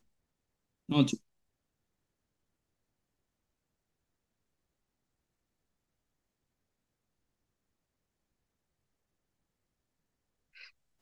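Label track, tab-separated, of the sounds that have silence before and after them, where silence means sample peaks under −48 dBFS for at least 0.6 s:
0.890000	1.170000	sound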